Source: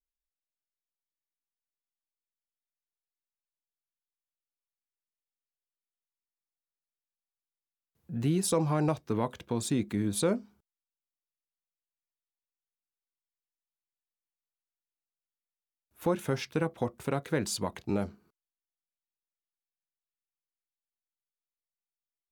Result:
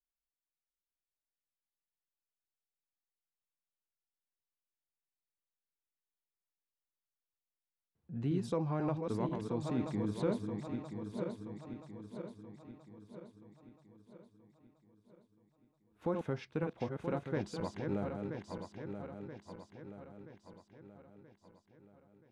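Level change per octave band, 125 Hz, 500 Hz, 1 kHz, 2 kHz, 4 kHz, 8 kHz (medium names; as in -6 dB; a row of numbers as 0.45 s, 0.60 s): -4.5 dB, -5.0 dB, -6.0 dB, -8.0 dB, -13.0 dB, -21.5 dB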